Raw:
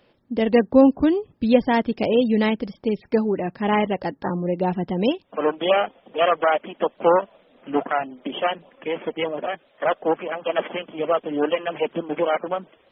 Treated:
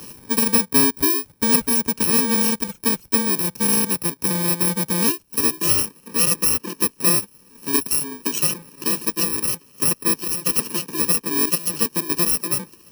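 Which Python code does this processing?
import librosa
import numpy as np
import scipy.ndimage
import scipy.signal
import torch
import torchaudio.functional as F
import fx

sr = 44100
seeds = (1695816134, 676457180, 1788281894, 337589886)

y = fx.bit_reversed(x, sr, seeds[0], block=64)
y = fx.band_squash(y, sr, depth_pct=70)
y = y * 10.0 ** (1.0 / 20.0)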